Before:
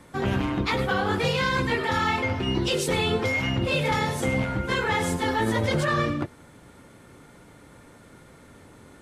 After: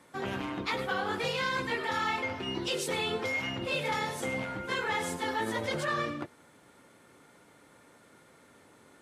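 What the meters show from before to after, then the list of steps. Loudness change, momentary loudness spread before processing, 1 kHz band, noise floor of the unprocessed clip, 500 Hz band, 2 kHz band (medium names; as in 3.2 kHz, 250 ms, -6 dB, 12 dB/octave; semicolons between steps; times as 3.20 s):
-7.0 dB, 2 LU, -6.0 dB, -51 dBFS, -7.5 dB, -5.5 dB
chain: high-pass 350 Hz 6 dB/octave; trim -5.5 dB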